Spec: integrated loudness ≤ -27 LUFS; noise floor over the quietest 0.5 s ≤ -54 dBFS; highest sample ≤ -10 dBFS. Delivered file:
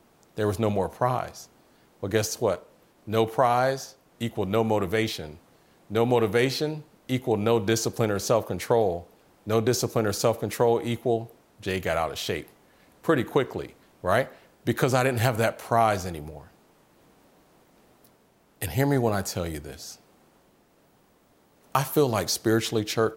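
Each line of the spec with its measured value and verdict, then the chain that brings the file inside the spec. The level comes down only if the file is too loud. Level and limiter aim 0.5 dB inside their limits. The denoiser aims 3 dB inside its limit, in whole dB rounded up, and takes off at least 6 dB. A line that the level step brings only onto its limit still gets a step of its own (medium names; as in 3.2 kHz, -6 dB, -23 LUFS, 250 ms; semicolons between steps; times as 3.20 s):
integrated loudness -26.0 LUFS: fail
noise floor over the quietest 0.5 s -62 dBFS: pass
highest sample -7.5 dBFS: fail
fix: trim -1.5 dB; peak limiter -10.5 dBFS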